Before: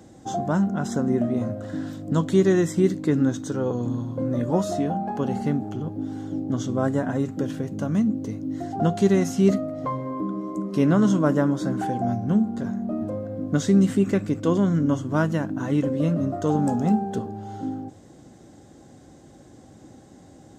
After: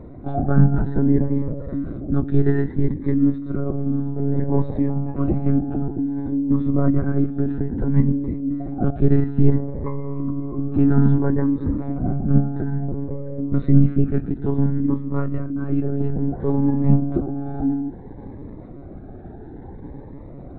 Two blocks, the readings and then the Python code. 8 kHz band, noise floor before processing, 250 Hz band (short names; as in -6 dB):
under -35 dB, -49 dBFS, +2.0 dB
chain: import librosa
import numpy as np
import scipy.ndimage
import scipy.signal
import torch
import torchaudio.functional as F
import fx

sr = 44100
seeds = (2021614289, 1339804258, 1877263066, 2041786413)

p1 = fx.dynamic_eq(x, sr, hz=720.0, q=0.9, threshold_db=-37.0, ratio=4.0, max_db=-7)
p2 = fx.rider(p1, sr, range_db=10, speed_s=2.0)
p3 = np.convolve(p2, np.full(14, 1.0 / 14))[:len(p2)]
p4 = fx.doubler(p3, sr, ms=15.0, db=-12)
p5 = p4 + fx.echo_single(p4, sr, ms=713, db=-20.5, dry=0)
p6 = fx.lpc_monotone(p5, sr, seeds[0], pitch_hz=140.0, order=10)
p7 = fx.notch_cascade(p6, sr, direction='rising', hz=0.59)
y = F.gain(torch.from_numpy(p7), 4.5).numpy()